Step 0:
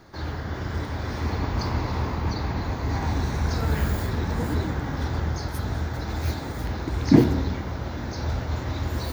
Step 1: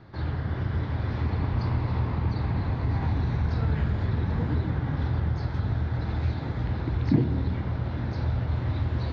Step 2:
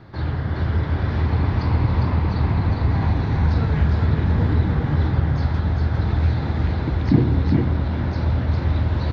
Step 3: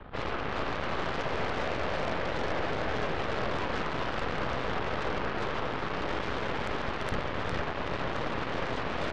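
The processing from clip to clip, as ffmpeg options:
ffmpeg -i in.wav -af "lowpass=frequency=4000:width=0.5412,lowpass=frequency=4000:width=1.3066,equalizer=frequency=120:width_type=o:width=1.3:gain=10,acompressor=threshold=-21dB:ratio=2,volume=-3dB" out.wav
ffmpeg -i in.wav -af "aecho=1:1:405:0.668,volume=5.5dB" out.wav
ffmpeg -i in.wav -filter_complex "[0:a]highpass=frequency=260:width_type=q:width=0.5412,highpass=frequency=260:width_type=q:width=1.307,lowpass=frequency=3400:width_type=q:width=0.5176,lowpass=frequency=3400:width_type=q:width=0.7071,lowpass=frequency=3400:width_type=q:width=1.932,afreqshift=-370,acrossover=split=280|760[link_01][link_02][link_03];[link_01]acompressor=threshold=-44dB:ratio=4[link_04];[link_02]acompressor=threshold=-37dB:ratio=4[link_05];[link_03]acompressor=threshold=-39dB:ratio=4[link_06];[link_04][link_05][link_06]amix=inputs=3:normalize=0,aeval=exprs='0.0708*(cos(1*acos(clip(val(0)/0.0708,-1,1)))-cos(1*PI/2))+0.0158*(cos(8*acos(clip(val(0)/0.0708,-1,1)))-cos(8*PI/2))':channel_layout=same,volume=2.5dB" out.wav

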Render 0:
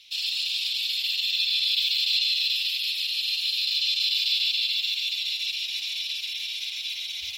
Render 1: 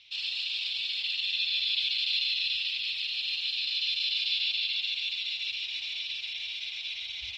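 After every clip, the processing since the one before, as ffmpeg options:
ffmpeg -i in.wav -af "lowpass=3100,asubboost=boost=2:cutoff=98" out.wav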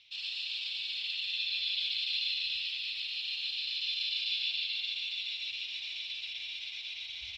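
ffmpeg -i in.wav -af "areverse,acompressor=mode=upward:threshold=-36dB:ratio=2.5,areverse,aecho=1:1:119:0.531,volume=-5.5dB" out.wav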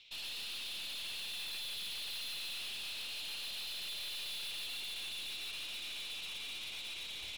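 ffmpeg -i in.wav -af "aeval=exprs='(tanh(158*val(0)+0.45)-tanh(0.45))/158':channel_layout=same,volume=3dB" out.wav

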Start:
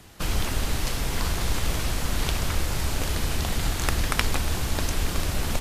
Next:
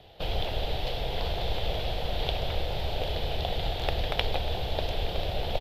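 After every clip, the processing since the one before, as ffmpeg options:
ffmpeg -i in.wav -af "firequalizer=gain_entry='entry(140,0);entry(250,-8);entry(470,9);entry(740,10);entry(1100,-8);entry(2200,-2);entry(3400,8);entry(6300,-18);entry(9000,-23);entry(13000,-11)':delay=0.05:min_phase=1,volume=-5dB" out.wav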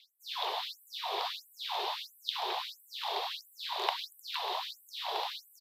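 ffmpeg -i in.wav -af "aeval=exprs='val(0)+0.01*(sin(2*PI*50*n/s)+sin(2*PI*2*50*n/s)/2+sin(2*PI*3*50*n/s)/3+sin(2*PI*4*50*n/s)/4+sin(2*PI*5*50*n/s)/5)':channel_layout=same,afreqshift=260,afftfilt=real='re*gte(b*sr/1024,360*pow(7900/360,0.5+0.5*sin(2*PI*1.5*pts/sr)))':imag='im*gte(b*sr/1024,360*pow(7900/360,0.5+0.5*sin(2*PI*1.5*pts/sr)))':win_size=1024:overlap=0.75" out.wav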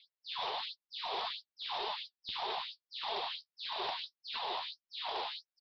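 ffmpeg -i in.wav -af "aresample=11025,volume=30.5dB,asoftclip=hard,volume=-30.5dB,aresample=44100,flanger=delay=4.5:depth=9.2:regen=34:speed=1.6:shape=sinusoidal,volume=2dB" out.wav

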